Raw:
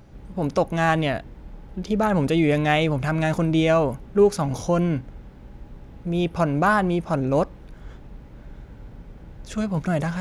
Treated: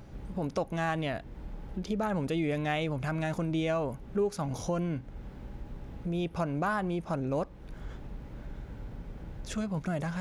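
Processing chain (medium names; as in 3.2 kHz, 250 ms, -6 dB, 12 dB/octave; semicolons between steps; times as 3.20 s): compression 2:1, threshold -36 dBFS, peak gain reduction 13 dB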